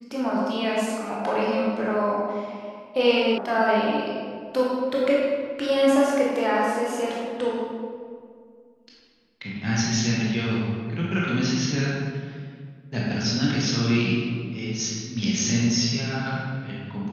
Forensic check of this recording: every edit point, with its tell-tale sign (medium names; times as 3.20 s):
3.38 s: sound stops dead